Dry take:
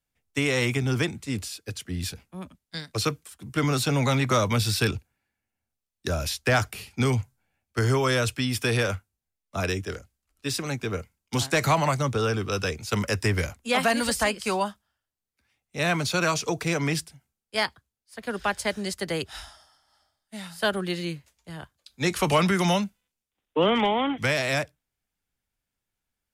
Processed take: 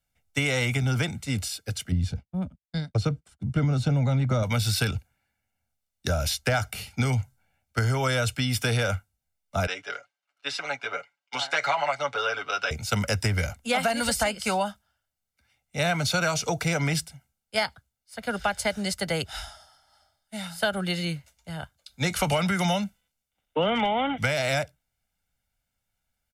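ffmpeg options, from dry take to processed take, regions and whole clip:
ffmpeg -i in.wav -filter_complex "[0:a]asettb=1/sr,asplit=3[link_01][link_02][link_03];[link_01]atrim=end=1.924[link_04];[link_02]atrim=start=1.92:end=4.43,asetpts=PTS-STARTPTS,afade=type=in:duration=0.004:curve=qsin,afade=type=out:start_time=2.506:duration=0.004:curve=qsin,lowpass=7800,agate=range=-33dB:threshold=-45dB:ratio=3:release=100:detection=peak,tiltshelf=frequency=630:gain=8[link_05];[link_03]atrim=start=4.426[link_06];[link_04][link_05]acrossfade=duration=0.004:curve1=hsin:curve2=qsin[link_07];[link_07][link_06]acrossfade=duration=0.004:curve1=qsin:curve2=hsin,asettb=1/sr,asplit=3[link_08][link_09][link_10];[link_08]atrim=end=9.674[link_11];[link_09]atrim=start=9.67:end=12.71,asetpts=PTS-STARTPTS,afade=type=in:duration=0.004:curve=qsin,afade=type=out:start_time=3.036:duration=0.004:curve=qsin,highpass=710,lowpass=3400,aecho=1:1:7.1:0.78,atrim=end_sample=134064[link_12];[link_10]atrim=start=12.706[link_13];[link_11][link_12]acrossfade=duration=0.004:curve1=hsin:curve2=qsin[link_14];[link_14][link_13]acrossfade=duration=0.004:curve1=qsin:curve2=hsin,aecho=1:1:1.4:0.56,acompressor=threshold=-23dB:ratio=6,volume=2dB" out.wav

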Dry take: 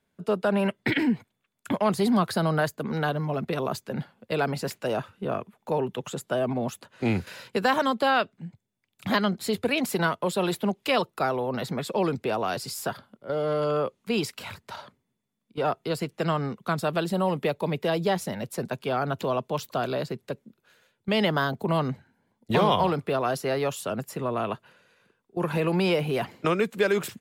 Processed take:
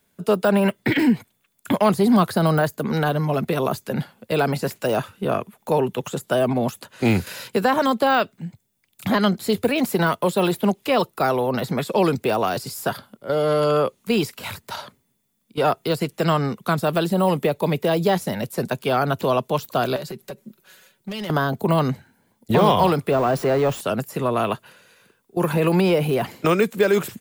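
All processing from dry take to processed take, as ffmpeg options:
ffmpeg -i in.wav -filter_complex "[0:a]asettb=1/sr,asplit=3[link_01][link_02][link_03];[link_01]atrim=end=19.964[link_04];[link_02]atrim=start=19.96:end=21.3,asetpts=PTS-STARTPTS,afade=type=in:duration=0.004:curve=qsin,afade=type=out:start_time=1.336:duration=0.004:curve=qsin,acompressor=threshold=-37dB:ratio=5:attack=3.2:release=140:knee=1:detection=peak,aecho=1:1:5.3:0.59,atrim=end_sample=59094,asoftclip=type=hard:threshold=-32dB[link_05];[link_03]atrim=start=21.296[link_06];[link_04][link_05]acrossfade=duration=0.004:curve1=hsin:curve2=qsin[link_07];[link_07][link_06]acrossfade=duration=0.004:curve1=qsin:curve2=hsin,asettb=1/sr,asplit=3[link_08][link_09][link_10];[link_08]atrim=end=23.114[link_11];[link_09]atrim=start=23.11:end=23.81,asetpts=PTS-STARTPTS,afade=type=in:duration=0.004:curve=qsin,afade=type=out:start_time=0.696:duration=0.004:curve=qsin,aeval=exprs='val(0)+0.5*0.0335*sgn(val(0))':channel_layout=same,lowpass=frequency=3600:poles=1[link_12];[link_10]atrim=start=23.806[link_13];[link_11][link_12]acrossfade=duration=0.004:curve1=hsin:curve2=qsin[link_14];[link_14][link_13]acrossfade=duration=0.004:curve1=qsin:curve2=hsin,aemphasis=mode=production:type=50kf,deesser=0.85,volume=6.5dB" out.wav

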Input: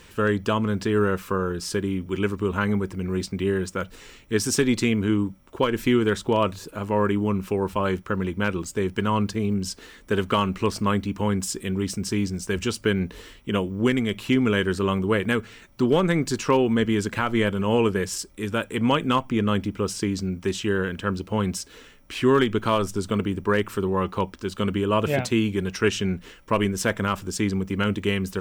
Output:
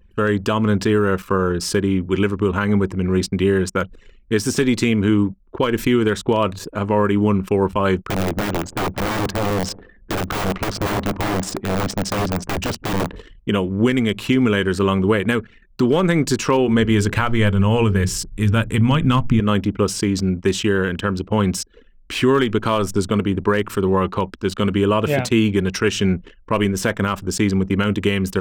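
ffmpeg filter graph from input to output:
ffmpeg -i in.wav -filter_complex "[0:a]asettb=1/sr,asplit=3[link_01][link_02][link_03];[link_01]atrim=end=8.074[link_04];[link_02]atrim=start=8.07:end=13.16,asetpts=PTS-STARTPTS,afade=type=in:duration=0.004:curve=qsin,afade=type=out:start_time=5.086:duration=0.004:curve=qsin,adynamicsmooth=sensitivity=6:basefreq=2900,aeval=exprs='(mod(11.9*val(0)+1,2)-1)/11.9':channel_layout=same,asplit=2[link_05][link_06];[link_06]adelay=168,lowpass=frequency=1400:poles=1,volume=-19dB,asplit=2[link_07][link_08];[link_08]adelay=168,lowpass=frequency=1400:poles=1,volume=0.48,asplit=2[link_09][link_10];[link_10]adelay=168,lowpass=frequency=1400:poles=1,volume=0.48,asplit=2[link_11][link_12];[link_12]adelay=168,lowpass=frequency=1400:poles=1,volume=0.48[link_13];[link_05][link_07][link_09][link_11][link_13]amix=inputs=5:normalize=0,atrim=end_sample=224469[link_14];[link_03]atrim=start=13.156[link_15];[link_04][link_14]acrossfade=duration=0.004:curve1=hsin:curve2=qsin[link_16];[link_16][link_15]acrossfade=duration=0.004:curve1=qsin:curve2=hsin,asettb=1/sr,asplit=3[link_17][link_18][link_19];[link_17]atrim=end=16.564[link_20];[link_18]atrim=start=16.56:end=19.4,asetpts=PTS-STARTPTS,afade=type=in:duration=0.004:curve=qsin,afade=type=out:start_time=2.836:duration=0.004:curve=qsin,bandreject=frequency=60:width_type=h:width=6,bandreject=frequency=120:width_type=h:width=6,bandreject=frequency=180:width_type=h:width=6,bandreject=frequency=240:width_type=h:width=6,bandreject=frequency=300:width_type=h:width=6,bandreject=frequency=360:width_type=h:width=6,bandreject=frequency=420:width_type=h:width=6,asubboost=boost=11.5:cutoff=140[link_21];[link_19]atrim=start=19.396[link_22];[link_20][link_21]acrossfade=duration=0.004:curve1=hsin:curve2=qsin[link_23];[link_23][link_22]acrossfade=duration=0.004:curve1=qsin:curve2=hsin,anlmdn=0.398,deesser=0.55,alimiter=limit=-15dB:level=0:latency=1:release=185,volume=8dB" out.wav

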